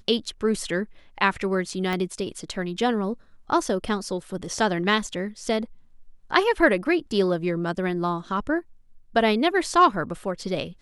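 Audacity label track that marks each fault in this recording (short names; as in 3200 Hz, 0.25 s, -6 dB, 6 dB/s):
1.930000	1.930000	pop -15 dBFS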